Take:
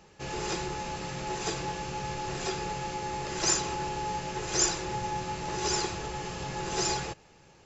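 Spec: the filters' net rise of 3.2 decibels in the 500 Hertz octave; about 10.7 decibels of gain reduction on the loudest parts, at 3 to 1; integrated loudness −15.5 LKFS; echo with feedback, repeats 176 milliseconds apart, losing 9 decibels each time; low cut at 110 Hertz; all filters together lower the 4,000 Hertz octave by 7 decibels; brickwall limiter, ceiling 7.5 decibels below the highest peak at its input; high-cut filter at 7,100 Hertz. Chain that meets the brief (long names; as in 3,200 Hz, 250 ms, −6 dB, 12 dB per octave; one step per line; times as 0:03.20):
high-pass filter 110 Hz
low-pass filter 7,100 Hz
parametric band 500 Hz +4.5 dB
parametric band 4,000 Hz −9 dB
downward compressor 3 to 1, threshold −40 dBFS
brickwall limiter −33.5 dBFS
repeating echo 176 ms, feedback 35%, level −9 dB
level +26.5 dB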